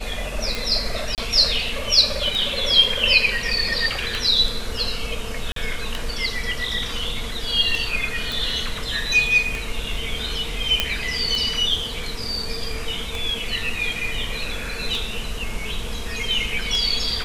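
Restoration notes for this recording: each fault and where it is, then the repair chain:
scratch tick 33 1/3 rpm
0:01.15–0:01.18: drop-out 28 ms
0:05.52–0:05.56: drop-out 43 ms
0:08.32: click
0:10.80: click −3 dBFS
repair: click removal
repair the gap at 0:01.15, 28 ms
repair the gap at 0:05.52, 43 ms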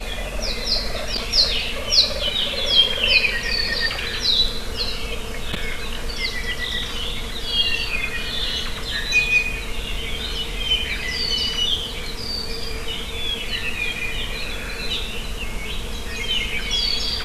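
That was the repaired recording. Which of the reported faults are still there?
none of them is left

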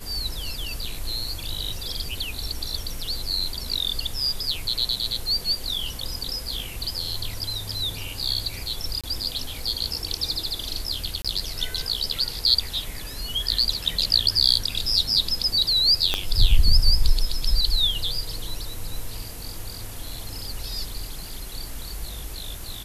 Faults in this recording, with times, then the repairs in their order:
0:09.01–0:09.04: drop-out 26 ms
0:11.22–0:11.25: drop-out 26 ms
0:16.14: click −8 dBFS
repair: click removal
repair the gap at 0:09.01, 26 ms
repair the gap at 0:11.22, 26 ms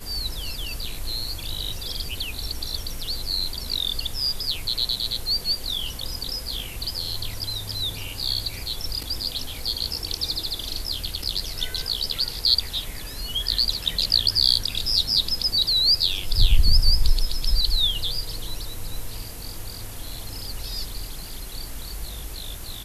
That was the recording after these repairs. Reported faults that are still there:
0:16.14: click

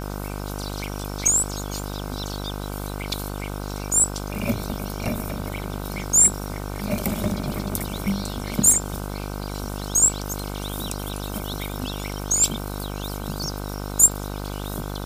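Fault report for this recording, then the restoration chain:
mains buzz 50 Hz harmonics 31 −31 dBFS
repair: hum removal 50 Hz, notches 31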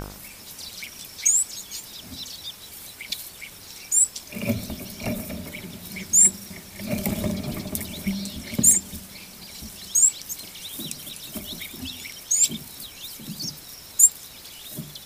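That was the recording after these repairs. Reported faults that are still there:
none of them is left

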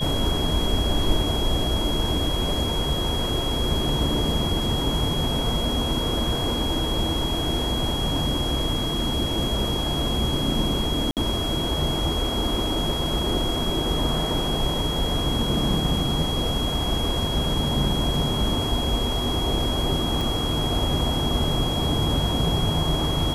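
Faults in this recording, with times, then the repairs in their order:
whistle 3,300 Hz −28 dBFS
0:11.11–0:11.17: drop-out 58 ms
0:20.21: click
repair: click removal
notch filter 3,300 Hz, Q 30
repair the gap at 0:11.11, 58 ms

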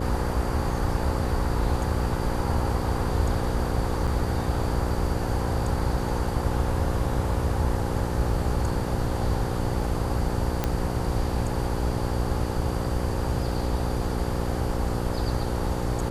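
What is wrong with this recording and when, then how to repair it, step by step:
mains buzz 60 Hz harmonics 9 −30 dBFS
0:04.07–0:04.08: drop-out 6.1 ms
0:10.64: click −10 dBFS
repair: click removal
hum removal 60 Hz, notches 9
repair the gap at 0:04.07, 6.1 ms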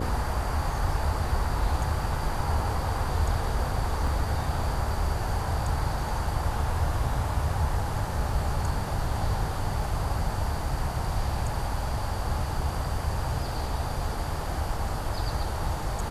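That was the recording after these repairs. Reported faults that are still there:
none of them is left

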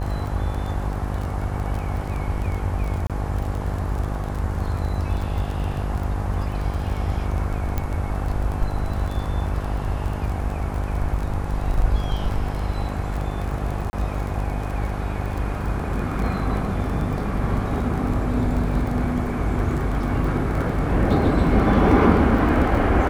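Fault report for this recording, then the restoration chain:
mains buzz 50 Hz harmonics 22 −27 dBFS
surface crackle 24 per second −27 dBFS
0:03.07–0:03.10: drop-out 27 ms
0:07.78: click −11 dBFS
0:13.90–0:13.93: drop-out 30 ms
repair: click removal
hum removal 50 Hz, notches 22
repair the gap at 0:03.07, 27 ms
repair the gap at 0:13.90, 30 ms

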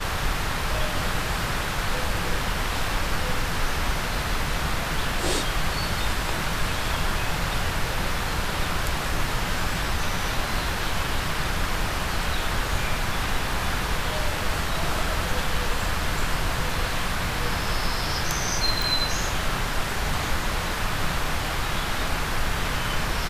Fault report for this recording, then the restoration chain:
0:18.82: click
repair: click removal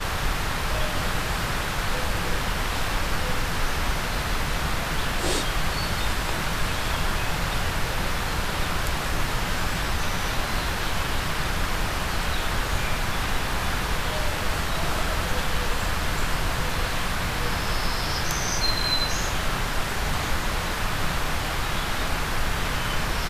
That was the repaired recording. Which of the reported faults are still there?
none of them is left

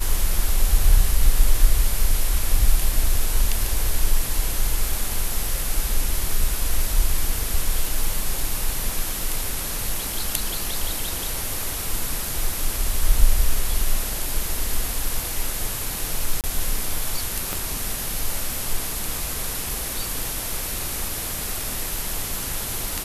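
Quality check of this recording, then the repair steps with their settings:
0:16.41–0:16.44: drop-out 28 ms
0:17.53: click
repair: click removal
repair the gap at 0:16.41, 28 ms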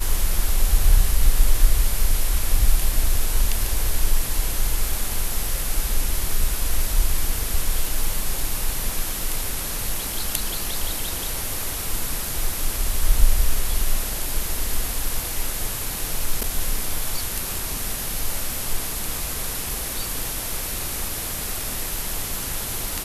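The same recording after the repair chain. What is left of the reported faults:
0:17.53: click

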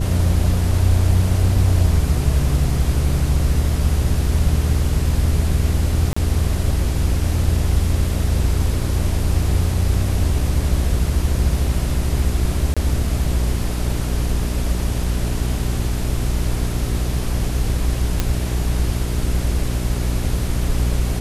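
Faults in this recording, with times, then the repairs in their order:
mains hum 60 Hz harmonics 7 −22 dBFS
0:06.13–0:06.17: drop-out 35 ms
0:12.74–0:12.77: drop-out 26 ms
0:18.20: click −4 dBFS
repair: click removal
hum removal 60 Hz, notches 7
repair the gap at 0:06.13, 35 ms
repair the gap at 0:12.74, 26 ms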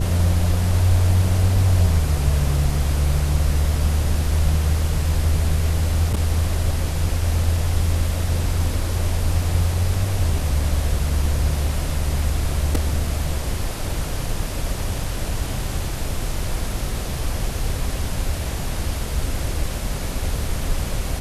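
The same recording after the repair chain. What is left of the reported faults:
none of them is left

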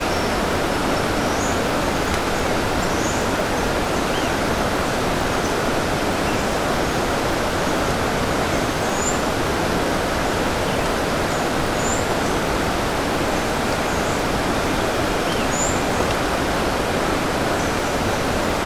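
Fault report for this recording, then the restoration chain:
surface crackle 53 per second −27 dBFS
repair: click removal

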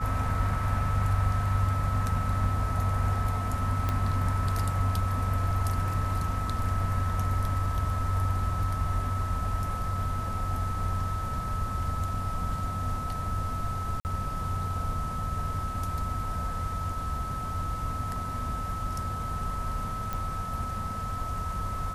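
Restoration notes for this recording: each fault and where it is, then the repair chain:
whistle 1,300 Hz −34 dBFS
0:03.89: click −15 dBFS
0:14.00–0:14.05: drop-out 49 ms
0:20.13: click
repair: click removal
notch filter 1,300 Hz, Q 30
repair the gap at 0:14.00, 49 ms

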